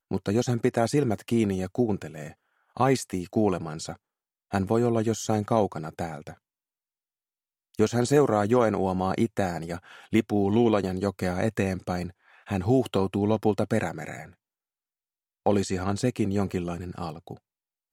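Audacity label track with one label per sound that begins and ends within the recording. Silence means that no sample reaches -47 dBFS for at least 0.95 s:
7.740000	14.330000	sound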